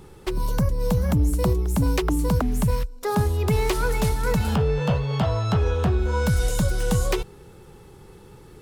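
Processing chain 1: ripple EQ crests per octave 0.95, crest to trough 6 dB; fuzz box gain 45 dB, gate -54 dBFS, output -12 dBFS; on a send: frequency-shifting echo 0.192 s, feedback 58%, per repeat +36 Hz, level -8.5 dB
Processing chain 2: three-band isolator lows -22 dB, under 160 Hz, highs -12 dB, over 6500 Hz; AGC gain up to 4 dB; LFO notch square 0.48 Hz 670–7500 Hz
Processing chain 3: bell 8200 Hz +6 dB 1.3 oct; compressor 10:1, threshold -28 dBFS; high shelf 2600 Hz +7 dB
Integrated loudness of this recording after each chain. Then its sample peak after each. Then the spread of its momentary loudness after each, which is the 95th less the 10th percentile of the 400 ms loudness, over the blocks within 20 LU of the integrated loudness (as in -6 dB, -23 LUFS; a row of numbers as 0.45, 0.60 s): -14.5, -24.5, -31.5 LUFS; -4.0, -9.0, -13.5 dBFS; 5, 4, 15 LU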